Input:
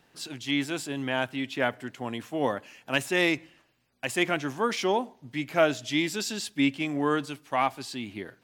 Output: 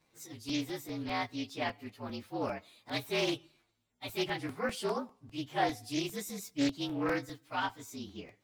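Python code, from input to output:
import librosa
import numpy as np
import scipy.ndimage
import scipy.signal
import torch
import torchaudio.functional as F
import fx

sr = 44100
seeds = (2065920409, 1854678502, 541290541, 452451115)

y = fx.partial_stretch(x, sr, pct=115)
y = fx.buffer_crackle(y, sr, first_s=0.49, period_s=0.2, block=128, kind='repeat')
y = fx.doppler_dist(y, sr, depth_ms=0.36)
y = y * 10.0 ** (-5.0 / 20.0)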